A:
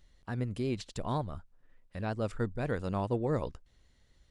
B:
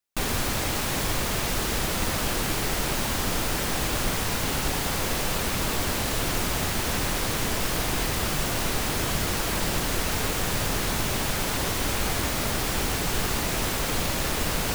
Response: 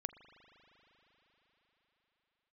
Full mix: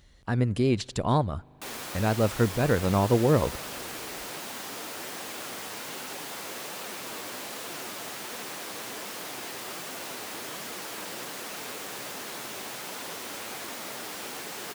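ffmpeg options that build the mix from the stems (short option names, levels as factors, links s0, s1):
-filter_complex "[0:a]highpass=42,acontrast=70,volume=1.19,asplit=2[s0][s1];[s1]volume=0.178[s2];[1:a]flanger=delay=3.6:depth=7.2:regen=65:speed=1.3:shape=triangular,highpass=290,adelay=1450,volume=0.376,asplit=2[s3][s4];[s4]volume=0.668[s5];[2:a]atrim=start_sample=2205[s6];[s2][s5]amix=inputs=2:normalize=0[s7];[s7][s6]afir=irnorm=-1:irlink=0[s8];[s0][s3][s8]amix=inputs=3:normalize=0"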